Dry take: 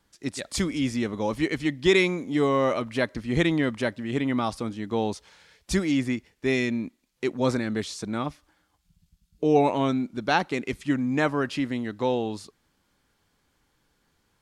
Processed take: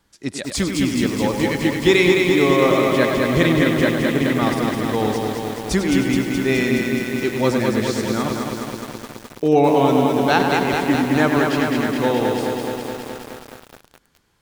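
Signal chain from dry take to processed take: tape echo 100 ms, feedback 40%, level -6.5 dB, low-pass 5.6 kHz; 5.88–7.31 s: whistle 1.5 kHz -39 dBFS; bit-crushed delay 211 ms, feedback 80%, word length 7-bit, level -3.5 dB; trim +4.5 dB

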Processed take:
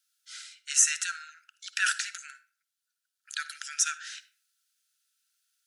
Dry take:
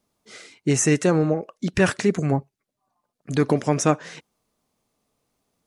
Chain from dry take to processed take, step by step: brick-wall FIR high-pass 1.3 kHz; peaking EQ 2.1 kHz -11 dB 0.44 oct; on a send: reverberation RT60 0.45 s, pre-delay 48 ms, DRR 14.5 dB; on the sum: trim +2.5 dB

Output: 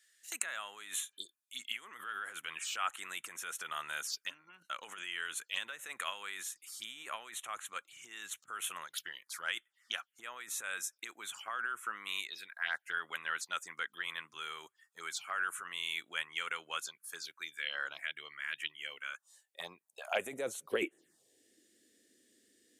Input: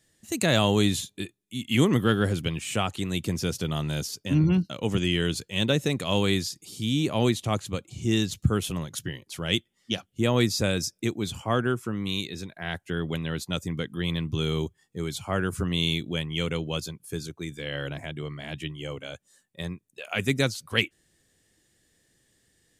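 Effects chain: touch-sensitive phaser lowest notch 150 Hz, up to 4.8 kHz, full sweep at -26.5 dBFS; compressor with a negative ratio -29 dBFS, ratio -1; high-pass sweep 1.4 kHz -> 230 Hz, 18.92–21.59 s; spectral replace 1.16–1.40 s, 620–3100 Hz both; trim -4.5 dB

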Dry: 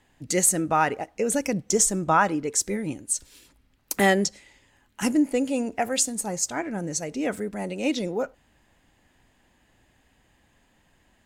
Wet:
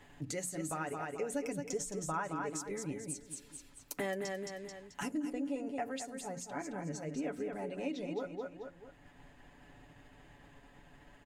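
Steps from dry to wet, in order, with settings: feedback delay 218 ms, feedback 28%, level -7 dB; compression 3:1, threshold -38 dBFS, peak gain reduction 17 dB; treble shelf 3.4 kHz -6.5 dB, from 5.30 s -12 dB; expander -58 dBFS; hum notches 60/120/180/240/300 Hz; comb 7 ms, depth 58%; upward compressor, threshold -45 dBFS; trim -1.5 dB

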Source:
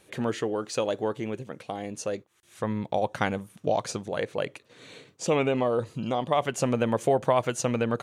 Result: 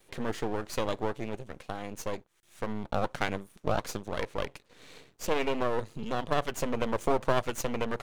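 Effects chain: 3.28–4.12 s: high-pass 150 Hz 12 dB/octave; half-wave rectifier

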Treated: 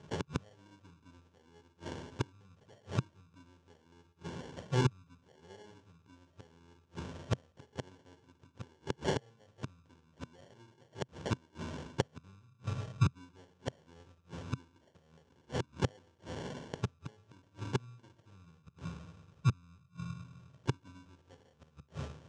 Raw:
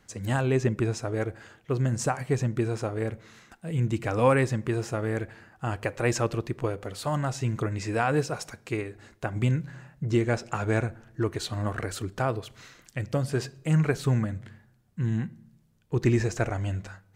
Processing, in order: tape speed -23%; two-slope reverb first 0.52 s, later 1.6 s, DRR 2.5 dB; sample-and-hold 35×; inverted gate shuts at -25 dBFS, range -40 dB; cabinet simulation 120–6800 Hz, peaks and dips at 130 Hz +4 dB, 220 Hz -5 dB, 320 Hz -6 dB, 730 Hz -7 dB, 2 kHz -8 dB, 4.4 kHz -5 dB; trim +9 dB

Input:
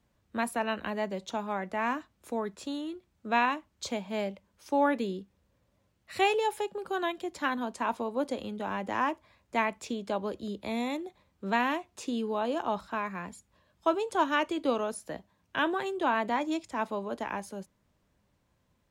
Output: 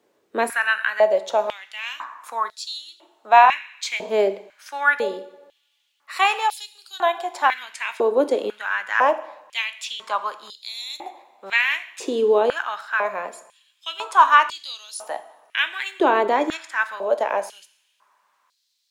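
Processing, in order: two-slope reverb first 0.74 s, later 2.3 s, DRR 11 dB; step-sequenced high-pass 2 Hz 400–4300 Hz; trim +7 dB

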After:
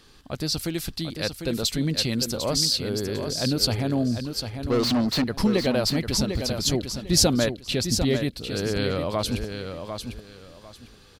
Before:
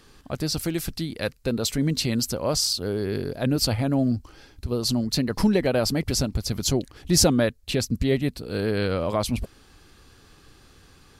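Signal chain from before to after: peaking EQ 3.9 kHz +5.5 dB 0.98 oct; 4.70–5.24 s: overdrive pedal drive 26 dB, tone 2.3 kHz, clips at -12.5 dBFS; on a send: feedback delay 749 ms, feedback 23%, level -7.5 dB; on the sum: trim -2 dB

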